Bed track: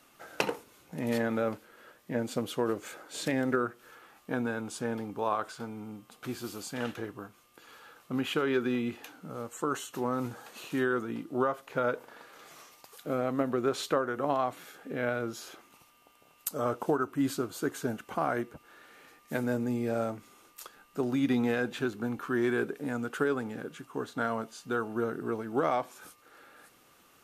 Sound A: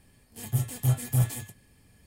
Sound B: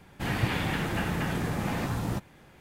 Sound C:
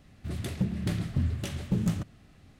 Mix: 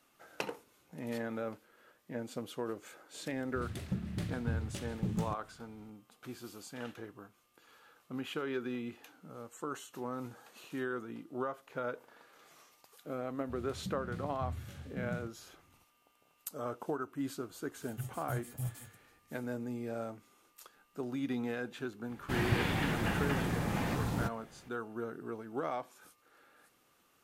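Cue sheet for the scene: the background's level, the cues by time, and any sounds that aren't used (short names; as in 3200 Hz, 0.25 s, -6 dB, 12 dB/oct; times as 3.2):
bed track -8.5 dB
3.31 add C -7.5 dB
13.25 add C -11 dB + harmonic-percussive split percussive -11 dB
17.45 add A -14.5 dB
22.09 add B -3.5 dB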